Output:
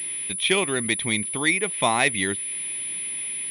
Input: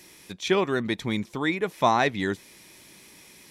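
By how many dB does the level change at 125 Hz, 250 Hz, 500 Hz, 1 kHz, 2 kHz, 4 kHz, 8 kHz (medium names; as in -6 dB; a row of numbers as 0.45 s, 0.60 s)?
-1.0 dB, -1.0 dB, -1.5 dB, -1.5 dB, +6.5 dB, +7.5 dB, +20.5 dB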